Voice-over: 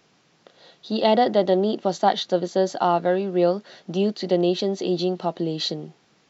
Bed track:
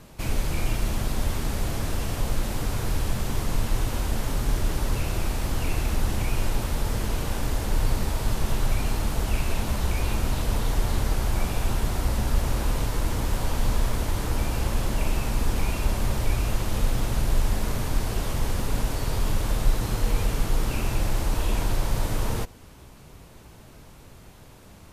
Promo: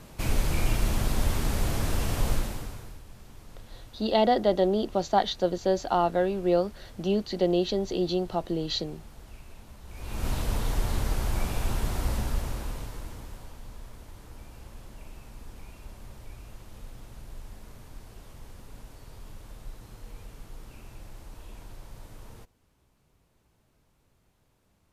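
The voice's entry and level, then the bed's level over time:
3.10 s, -4.0 dB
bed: 2.33 s 0 dB
3.03 s -22 dB
9.84 s -22 dB
10.27 s -3.5 dB
12.14 s -3.5 dB
13.62 s -20.5 dB

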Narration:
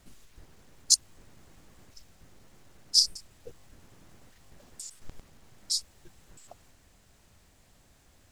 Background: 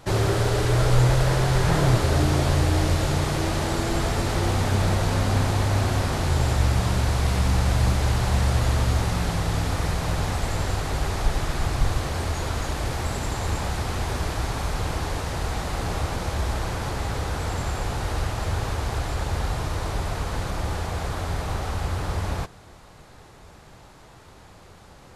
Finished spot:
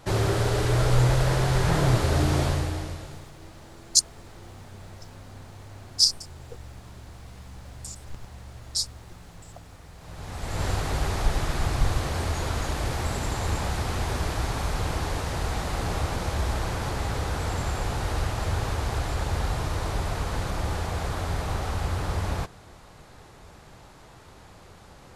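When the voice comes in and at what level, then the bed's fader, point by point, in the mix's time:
3.05 s, +2.0 dB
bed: 2.43 s -2 dB
3.31 s -22.5 dB
9.92 s -22.5 dB
10.65 s -1 dB

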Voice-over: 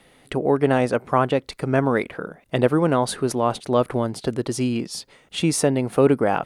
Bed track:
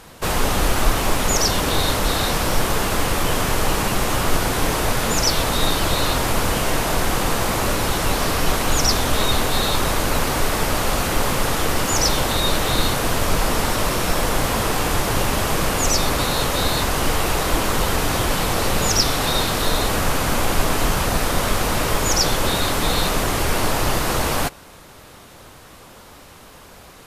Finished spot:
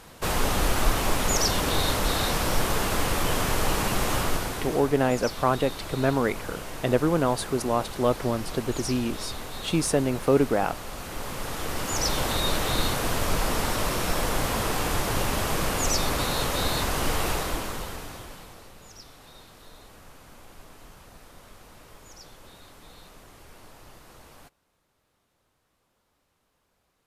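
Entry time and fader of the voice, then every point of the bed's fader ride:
4.30 s, -4.0 dB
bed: 4.18 s -5 dB
4.92 s -17 dB
10.91 s -17 dB
12.25 s -6 dB
17.30 s -6 dB
18.75 s -29.5 dB

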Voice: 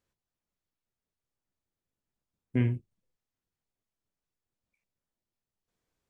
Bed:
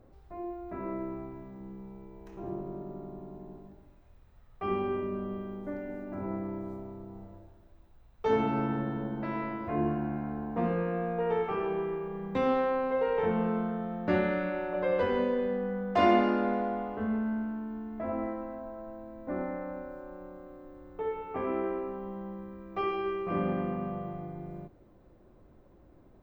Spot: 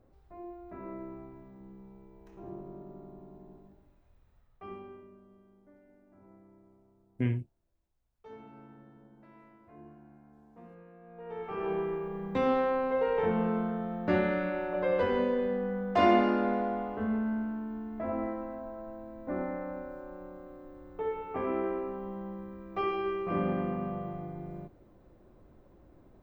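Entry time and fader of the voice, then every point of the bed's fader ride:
4.65 s, -3.0 dB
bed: 4.33 s -6 dB
5.22 s -22.5 dB
11.00 s -22.5 dB
11.70 s 0 dB

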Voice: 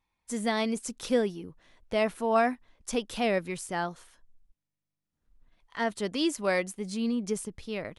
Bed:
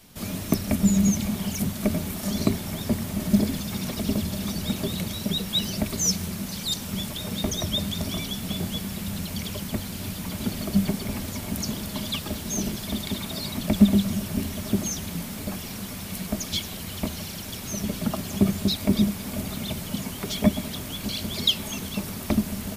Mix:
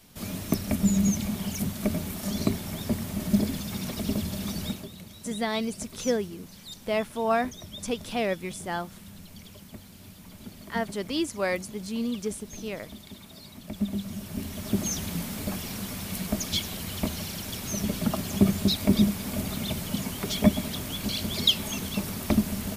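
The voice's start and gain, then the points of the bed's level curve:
4.95 s, -0.5 dB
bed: 4.66 s -3 dB
4.90 s -15 dB
13.64 s -15 dB
14.94 s 0 dB

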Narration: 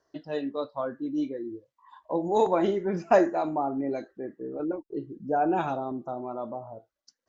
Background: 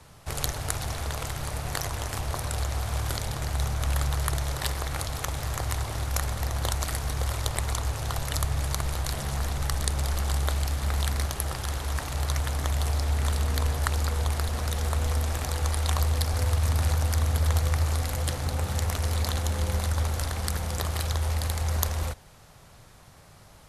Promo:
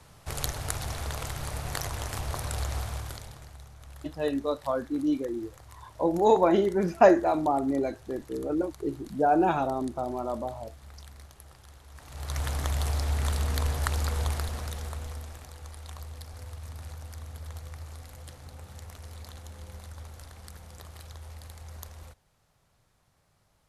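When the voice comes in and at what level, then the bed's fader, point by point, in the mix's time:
3.90 s, +2.5 dB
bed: 2.79 s -2.5 dB
3.64 s -21 dB
11.90 s -21 dB
12.43 s -2 dB
14.28 s -2 dB
15.53 s -17 dB

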